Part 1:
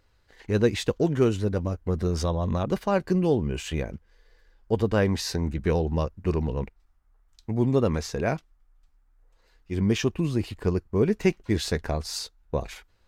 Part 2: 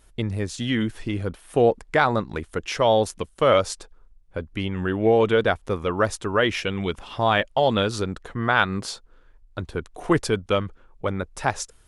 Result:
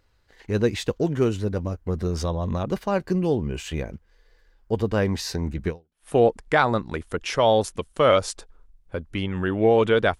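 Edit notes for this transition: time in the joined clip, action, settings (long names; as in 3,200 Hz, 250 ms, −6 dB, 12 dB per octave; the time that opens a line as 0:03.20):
part 1
0:05.88: continue with part 2 from 0:01.30, crossfade 0.40 s exponential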